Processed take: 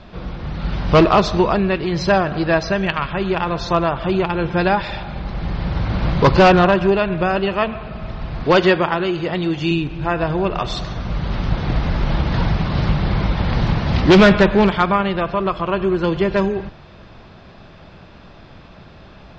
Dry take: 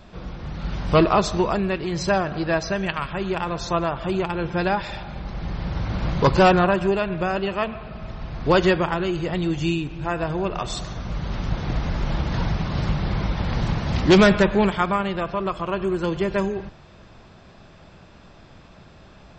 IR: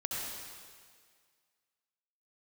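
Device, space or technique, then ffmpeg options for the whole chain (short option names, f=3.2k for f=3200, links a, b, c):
synthesiser wavefolder: -filter_complex "[0:a]asettb=1/sr,asplit=3[a][b][c];[a]atrim=end=8.444[d];[b]atrim=start=8.44:end=9.71,asetpts=PTS-STARTPTS,afade=t=in:d=0.004:c=qsin,afade=t=out:st=1.266:d=0.004:c=qsin,highpass=f=210:p=1[e];[c]atrim=start=9.706[f];[d][e]acrossfade=d=0.004:c1=hsin:c2=qsin[g];[g][f]acrossfade=d=0.004:c1=qsin:c2=hsin,aeval=exprs='0.299*(abs(mod(val(0)/0.299+3,4)-2)-1)':c=same,lowpass=f=5.1k:w=0.5412,lowpass=f=5.1k:w=1.3066,volume=5.5dB"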